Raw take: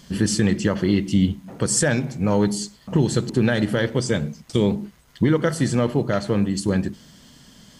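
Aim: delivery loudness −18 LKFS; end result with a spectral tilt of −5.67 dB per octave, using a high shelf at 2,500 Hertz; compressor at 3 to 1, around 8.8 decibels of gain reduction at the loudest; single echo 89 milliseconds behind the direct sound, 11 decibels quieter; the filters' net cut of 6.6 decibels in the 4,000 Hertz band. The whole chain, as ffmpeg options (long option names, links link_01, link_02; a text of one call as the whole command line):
ffmpeg -i in.wav -af "highshelf=frequency=2500:gain=-4.5,equalizer=frequency=4000:width_type=o:gain=-4.5,acompressor=threshold=-26dB:ratio=3,aecho=1:1:89:0.282,volume=11.5dB" out.wav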